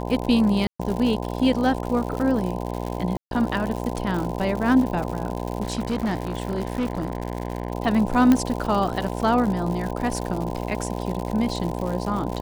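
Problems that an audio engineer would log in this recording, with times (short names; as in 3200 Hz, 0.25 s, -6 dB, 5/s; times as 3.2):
buzz 60 Hz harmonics 17 -29 dBFS
crackle 140/s -28 dBFS
0.67–0.8 gap 0.125 s
3.17–3.31 gap 0.142 s
5.62–7.72 clipped -20 dBFS
8.32 pop -7 dBFS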